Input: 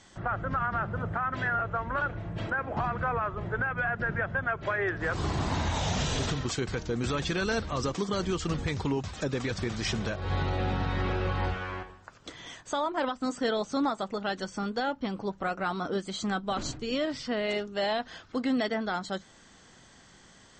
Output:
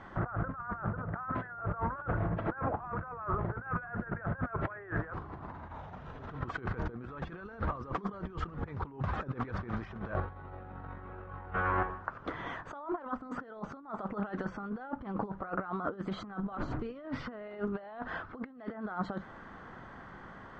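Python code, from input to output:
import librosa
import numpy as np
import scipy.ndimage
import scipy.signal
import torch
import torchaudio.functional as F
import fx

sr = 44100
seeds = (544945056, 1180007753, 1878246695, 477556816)

y = fx.over_compress(x, sr, threshold_db=-37.0, ratio=-0.5)
y = fx.lowpass_res(y, sr, hz=1300.0, q=1.9)
y = fx.doppler_dist(y, sr, depth_ms=0.17)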